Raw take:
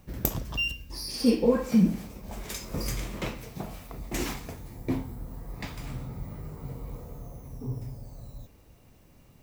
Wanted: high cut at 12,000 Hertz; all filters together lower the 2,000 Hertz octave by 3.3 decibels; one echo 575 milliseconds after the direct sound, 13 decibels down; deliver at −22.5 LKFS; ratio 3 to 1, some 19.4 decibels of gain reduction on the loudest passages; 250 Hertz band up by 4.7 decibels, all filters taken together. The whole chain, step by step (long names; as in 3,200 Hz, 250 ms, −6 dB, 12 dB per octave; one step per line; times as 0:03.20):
low-pass filter 12,000 Hz
parametric band 250 Hz +5.5 dB
parametric band 2,000 Hz −5.5 dB
downward compressor 3 to 1, threshold −40 dBFS
single-tap delay 575 ms −13 dB
level +19.5 dB